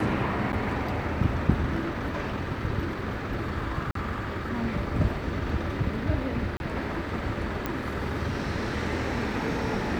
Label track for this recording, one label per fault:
0.520000	0.530000	dropout 9 ms
3.910000	3.950000	dropout 43 ms
6.570000	6.600000	dropout 31 ms
7.660000	7.660000	pop -15 dBFS

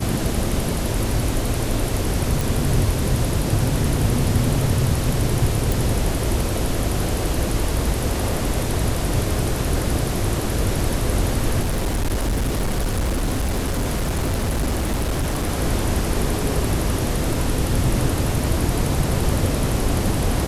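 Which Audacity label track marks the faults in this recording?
2.410000	2.410000	pop
5.720000	5.720000	pop
11.610000	15.500000	clipped -17.5 dBFS

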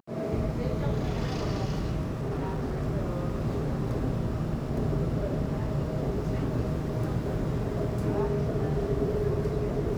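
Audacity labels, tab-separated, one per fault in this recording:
2.200000	2.830000	clipped -27 dBFS

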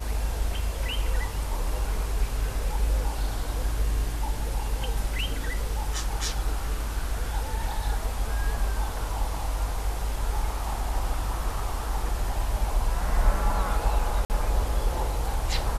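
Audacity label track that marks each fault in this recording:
14.250000	14.300000	dropout 49 ms

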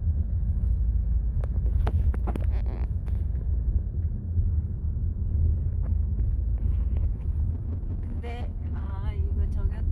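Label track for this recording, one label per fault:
7.520000	8.930000	clipped -27 dBFS

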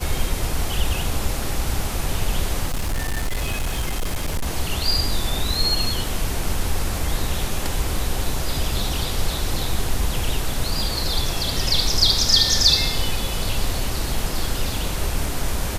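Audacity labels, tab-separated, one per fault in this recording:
2.680000	4.470000	clipped -19 dBFS

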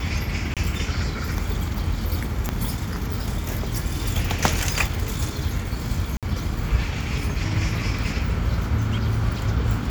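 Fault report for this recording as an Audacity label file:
0.540000	0.570000	dropout 27 ms
2.490000	2.490000	pop -9 dBFS
6.170000	6.230000	dropout 57 ms

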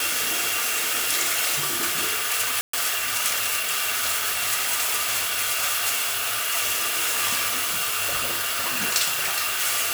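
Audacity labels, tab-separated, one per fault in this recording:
2.610000	2.730000	dropout 124 ms

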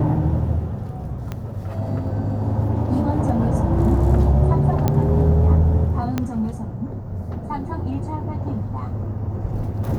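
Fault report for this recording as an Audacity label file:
1.320000	1.320000	pop -15 dBFS
4.880000	4.880000	pop -7 dBFS
6.180000	6.180000	pop -9 dBFS

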